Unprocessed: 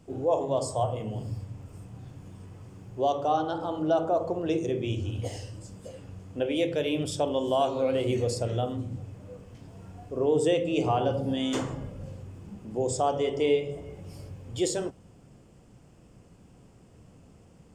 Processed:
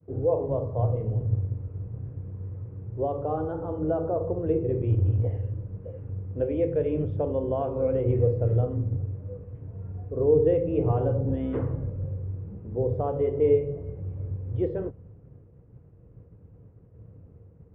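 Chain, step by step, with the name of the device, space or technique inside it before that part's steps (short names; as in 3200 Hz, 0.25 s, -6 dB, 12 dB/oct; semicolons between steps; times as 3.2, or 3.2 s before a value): expander -51 dBFS; RIAA curve playback; sub-octave bass pedal (octaver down 2 oct, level -5 dB; speaker cabinet 66–2100 Hz, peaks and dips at 100 Hz +6 dB, 220 Hz -6 dB, 470 Hz +9 dB, 760 Hz -3 dB); gain -6 dB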